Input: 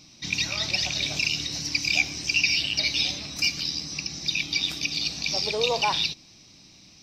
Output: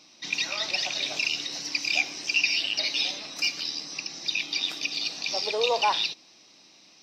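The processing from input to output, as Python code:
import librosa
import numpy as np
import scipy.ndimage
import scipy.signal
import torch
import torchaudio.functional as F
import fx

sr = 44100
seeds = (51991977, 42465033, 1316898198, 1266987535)

y = scipy.signal.sosfilt(scipy.signal.butter(2, 420.0, 'highpass', fs=sr, output='sos'), x)
y = fx.high_shelf(y, sr, hz=4100.0, db=-9.0)
y = fx.notch(y, sr, hz=2300.0, q=20.0)
y = y * 10.0 ** (2.5 / 20.0)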